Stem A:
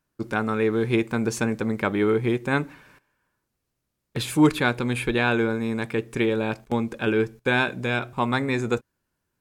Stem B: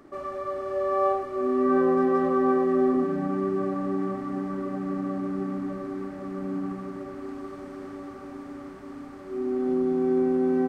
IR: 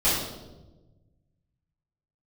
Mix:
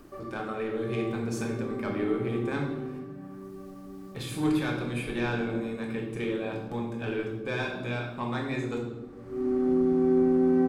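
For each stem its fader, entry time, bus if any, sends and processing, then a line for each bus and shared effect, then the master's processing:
−13.0 dB, 0.00 s, send −11.5 dB, upward compression, threshold −31 dBFS; soft clipping −13 dBFS, distortion −18 dB
−2.0 dB, 0.00 s, no send, low-shelf EQ 170 Hz +11.5 dB; automatic ducking −17 dB, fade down 0.50 s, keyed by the first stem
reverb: on, RT60 1.1 s, pre-delay 3 ms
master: no processing

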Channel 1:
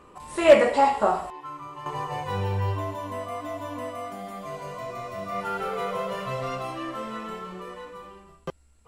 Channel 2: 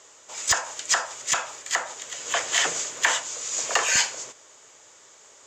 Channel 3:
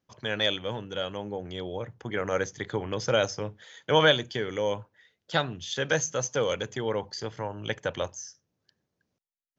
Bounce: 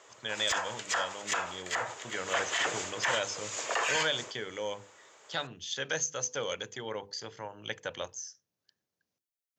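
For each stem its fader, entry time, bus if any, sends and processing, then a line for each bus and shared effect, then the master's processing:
muted
−1.0 dB, 0.00 s, no send, bass and treble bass −6 dB, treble −11 dB
−6.0 dB, 0.00 s, no send, spectral tilt +2 dB per octave; mains-hum notches 50/100/150/200/250/300/350/400/450/500 Hz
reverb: not used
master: brickwall limiter −19 dBFS, peak gain reduction 9.5 dB

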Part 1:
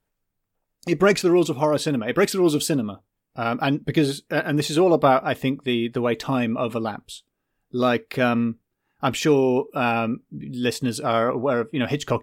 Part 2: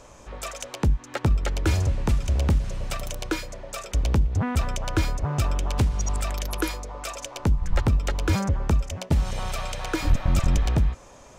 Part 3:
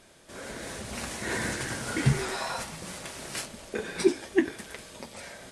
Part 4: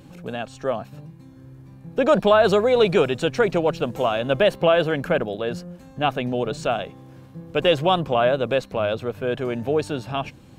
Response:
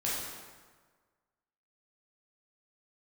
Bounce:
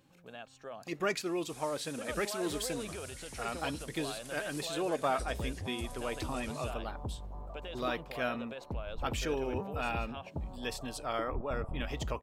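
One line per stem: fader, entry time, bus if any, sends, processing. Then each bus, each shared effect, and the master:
−11.0 dB, 0.00 s, no send, no processing
0:04.92 −19.5 dB → 0:05.12 −9 dB, 1.25 s, no send, inverse Chebyshev low-pass filter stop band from 1,900 Hz
−1.0 dB, 1.20 s, no send, first difference; downward compressor 4 to 1, threshold −48 dBFS, peak gain reduction 13 dB
−14.0 dB, 0.00 s, no send, brickwall limiter −16.5 dBFS, peak gain reduction 11.5 dB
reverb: not used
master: low-shelf EQ 480 Hz −9.5 dB

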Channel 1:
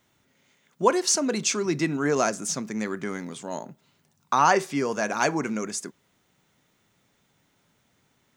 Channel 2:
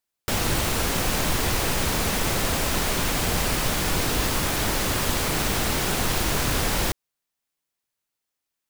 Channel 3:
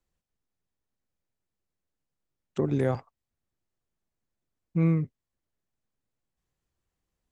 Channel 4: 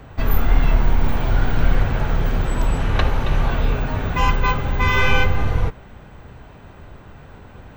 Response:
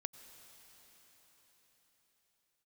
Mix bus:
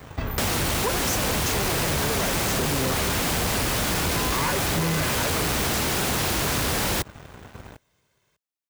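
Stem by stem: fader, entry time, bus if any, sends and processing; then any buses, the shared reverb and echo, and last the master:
−11.0 dB, 0.00 s, send −6.5 dB, lower of the sound and its delayed copy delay 1.9 ms; upward compression, threshold −42 dBFS
−4.5 dB, 0.10 s, no send, no processing
−5.5 dB, 0.00 s, no send, no processing
−11.5 dB, 0.00 s, send −4.5 dB, downward compressor 6 to 1, threshold −22 dBFS, peak gain reduction 13.5 dB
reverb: on, pre-delay 82 ms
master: high-pass filter 57 Hz; leveller curve on the samples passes 3; downward compressor, threshold −22 dBFS, peak gain reduction 5.5 dB

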